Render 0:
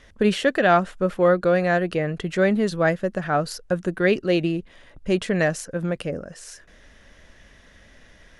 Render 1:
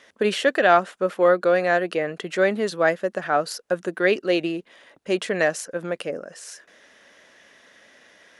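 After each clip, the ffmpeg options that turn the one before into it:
-af "highpass=340,volume=1.5dB"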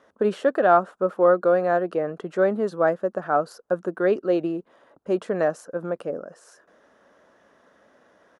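-af "firequalizer=gain_entry='entry(1300,0);entry(2000,-16);entry(7600,-14)':delay=0.05:min_phase=1"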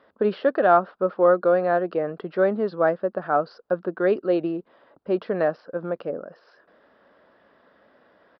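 -af "aresample=11025,aresample=44100"

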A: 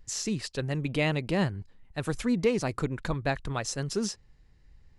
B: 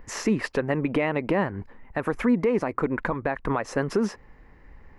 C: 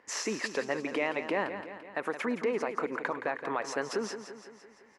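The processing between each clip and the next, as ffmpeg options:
-filter_complex "[0:a]equalizer=f=125:t=o:w=1:g=-4,equalizer=f=250:t=o:w=1:g=8,equalizer=f=500:t=o:w=1:g=7,equalizer=f=1k:t=o:w=1:g=11,equalizer=f=2k:t=o:w=1:g=9,equalizer=f=4k:t=o:w=1:g=-9,equalizer=f=8k:t=o:w=1:g=-11,asplit=2[a][b];[b]acompressor=threshold=-27dB:ratio=6,volume=2dB[c];[a][c]amix=inputs=2:normalize=0,alimiter=limit=-14dB:level=0:latency=1:release=213"
-af "highpass=350,lowpass=6.3k,aecho=1:1:170|340|510|680|850|1020|1190:0.316|0.18|0.103|0.0586|0.0334|0.019|0.0108,crystalizer=i=2.5:c=0,volume=-5.5dB"

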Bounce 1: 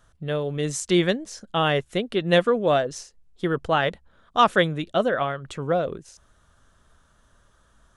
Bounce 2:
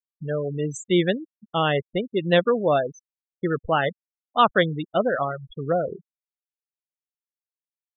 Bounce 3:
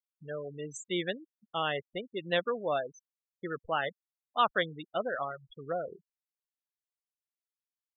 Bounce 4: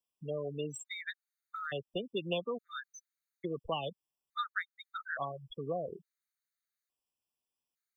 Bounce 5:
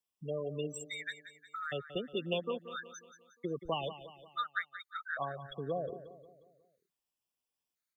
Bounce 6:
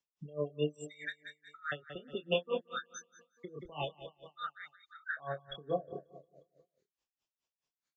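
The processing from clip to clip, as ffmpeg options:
-af "afftfilt=real='re*gte(hypot(re,im),0.0794)':imag='im*gte(hypot(re,im),0.0794)':win_size=1024:overlap=0.75"
-af "lowshelf=f=400:g=-11.5,volume=-7dB"
-filter_complex "[0:a]acrossover=split=200|1700[a][b][c];[a]acompressor=threshold=-51dB:ratio=4[d];[b]acompressor=threshold=-41dB:ratio=4[e];[c]acompressor=threshold=-44dB:ratio=4[f];[d][e][f]amix=inputs=3:normalize=0,acrossover=split=240|690|4000[g][h][i][j];[j]acrusher=bits=6:mode=log:mix=0:aa=0.000001[k];[g][h][i][k]amix=inputs=4:normalize=0,afftfilt=real='re*gt(sin(2*PI*0.58*pts/sr)*(1-2*mod(floor(b*sr/1024/1200),2)),0)':imag='im*gt(sin(2*PI*0.58*pts/sr)*(1-2*mod(floor(b*sr/1024/1200),2)),0)':win_size=1024:overlap=0.75,volume=6dB"
-af "aecho=1:1:179|358|537|716|895:0.224|0.11|0.0538|0.0263|0.0129"
-filter_complex "[0:a]asplit=2[a][b];[b]adelay=27,volume=-3.5dB[c];[a][c]amix=inputs=2:normalize=0,aresample=16000,aresample=44100,aeval=exprs='val(0)*pow(10,-24*(0.5-0.5*cos(2*PI*4.7*n/s))/20)':c=same,volume=3.5dB"

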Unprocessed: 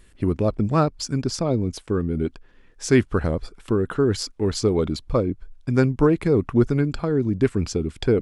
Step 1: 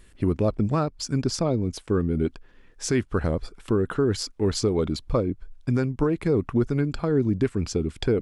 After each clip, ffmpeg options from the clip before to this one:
-af "alimiter=limit=-12.5dB:level=0:latency=1:release=415"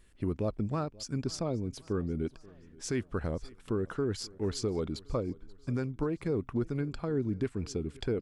-af "aecho=1:1:533|1066|1599:0.0708|0.0361|0.0184,volume=-9dB"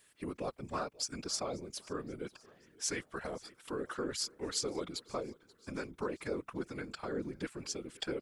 -af "highpass=f=970:p=1,highshelf=f=7.6k:g=6.5,afftfilt=real='hypot(re,im)*cos(2*PI*random(0))':imag='hypot(re,im)*sin(2*PI*random(1))':win_size=512:overlap=0.75,volume=8.5dB"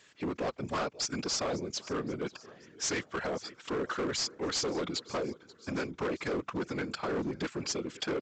-af "highpass=84,aresample=16000,asoftclip=type=hard:threshold=-37.5dB,aresample=44100,volume=8.5dB"

